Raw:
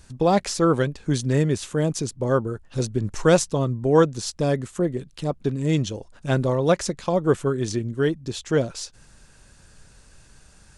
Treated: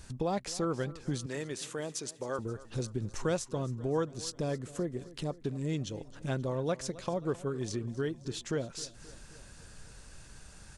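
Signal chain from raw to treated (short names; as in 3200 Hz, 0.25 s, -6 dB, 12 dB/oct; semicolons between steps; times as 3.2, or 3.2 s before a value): 1.26–2.39 HPF 790 Hz 6 dB/oct; compressor 2:1, threshold -40 dBFS, peak gain reduction 15.5 dB; feedback echo 0.265 s, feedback 57%, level -18.5 dB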